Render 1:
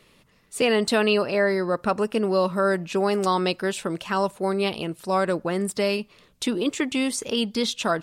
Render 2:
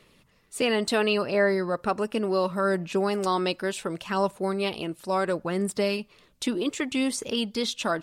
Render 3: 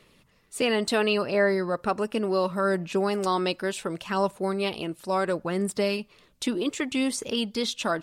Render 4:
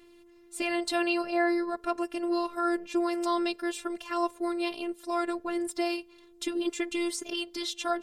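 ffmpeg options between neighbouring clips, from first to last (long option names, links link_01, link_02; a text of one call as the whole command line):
ffmpeg -i in.wav -af "aphaser=in_gain=1:out_gain=1:delay=3.5:decay=0.24:speed=0.7:type=sinusoidal,volume=-3dB" out.wav
ffmpeg -i in.wav -af anull out.wav
ffmpeg -i in.wav -af "aeval=exprs='val(0)+0.00355*sin(2*PI*430*n/s)':channel_layout=same,afftfilt=real='hypot(re,im)*cos(PI*b)':imag='0':win_size=512:overlap=0.75" out.wav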